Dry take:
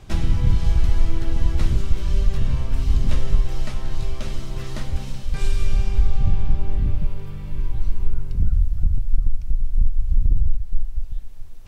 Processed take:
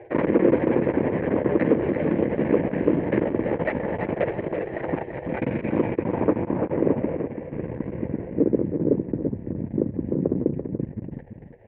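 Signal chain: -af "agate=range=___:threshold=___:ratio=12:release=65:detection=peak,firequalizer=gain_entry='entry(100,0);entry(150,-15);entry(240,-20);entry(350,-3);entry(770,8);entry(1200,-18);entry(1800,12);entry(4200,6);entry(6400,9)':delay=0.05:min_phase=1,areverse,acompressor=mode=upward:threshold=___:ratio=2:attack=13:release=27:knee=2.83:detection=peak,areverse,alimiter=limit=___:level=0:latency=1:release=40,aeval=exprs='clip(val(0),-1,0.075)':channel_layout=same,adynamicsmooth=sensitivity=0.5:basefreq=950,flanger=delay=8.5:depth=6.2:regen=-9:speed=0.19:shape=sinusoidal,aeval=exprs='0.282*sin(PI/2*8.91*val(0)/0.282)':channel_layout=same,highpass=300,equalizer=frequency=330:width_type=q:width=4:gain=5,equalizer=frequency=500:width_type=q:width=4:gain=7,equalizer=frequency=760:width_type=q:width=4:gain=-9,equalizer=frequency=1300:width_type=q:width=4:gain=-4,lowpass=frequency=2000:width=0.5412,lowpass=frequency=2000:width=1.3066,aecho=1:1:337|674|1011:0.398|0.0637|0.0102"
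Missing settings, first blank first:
-29dB, -24dB, -26dB, -11dB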